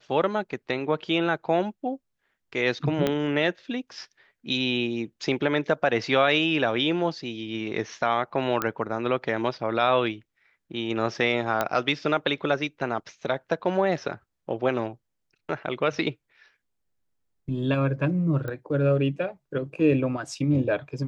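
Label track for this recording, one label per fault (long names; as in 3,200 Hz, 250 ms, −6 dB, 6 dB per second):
3.070000	3.070000	click −11 dBFS
8.620000	8.620000	click −10 dBFS
11.610000	11.610000	click −10 dBFS
18.480000	18.480000	click −21 dBFS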